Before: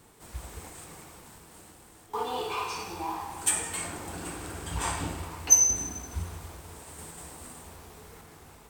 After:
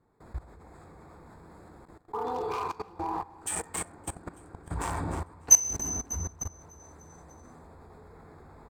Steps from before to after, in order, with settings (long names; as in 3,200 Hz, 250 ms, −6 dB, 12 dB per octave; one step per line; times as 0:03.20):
adaptive Wiener filter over 15 samples
repeating echo 298 ms, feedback 56%, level −14 dB
output level in coarse steps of 19 dB
level +6 dB